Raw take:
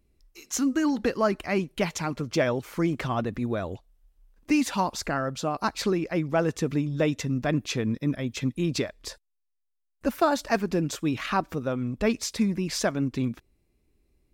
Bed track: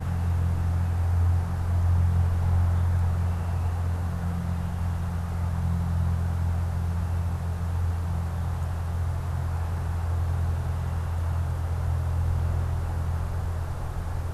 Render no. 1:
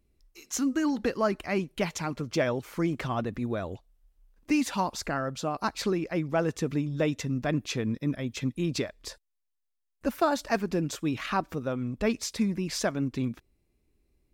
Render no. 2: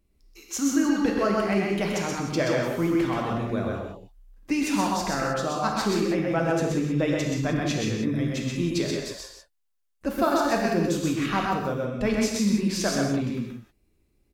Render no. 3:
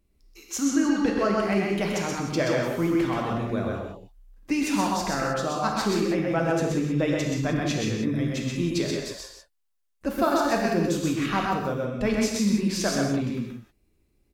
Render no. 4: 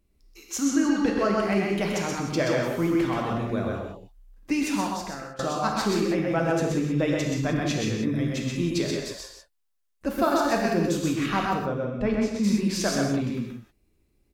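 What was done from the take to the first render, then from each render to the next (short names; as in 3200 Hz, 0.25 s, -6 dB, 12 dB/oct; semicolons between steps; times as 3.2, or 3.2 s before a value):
gain -2.5 dB
echo 0.128 s -3.5 dB; non-linear reverb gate 0.21 s flat, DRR 0.5 dB
0.65–1.43 LPF 9600 Hz
4.59–5.39 fade out, to -19.5 dB; 11.64–12.43 LPF 2400 Hz -> 1200 Hz 6 dB/oct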